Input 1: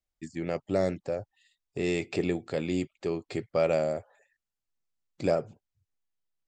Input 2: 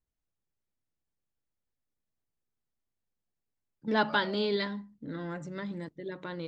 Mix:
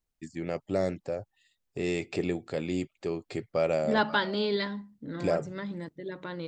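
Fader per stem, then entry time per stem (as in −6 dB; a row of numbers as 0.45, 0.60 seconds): −1.5, +1.0 decibels; 0.00, 0.00 seconds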